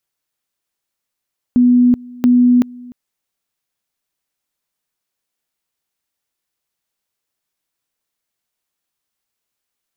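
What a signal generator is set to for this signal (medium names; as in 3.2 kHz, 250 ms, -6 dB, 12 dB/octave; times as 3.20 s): two-level tone 246 Hz -7 dBFS, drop 24 dB, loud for 0.38 s, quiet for 0.30 s, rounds 2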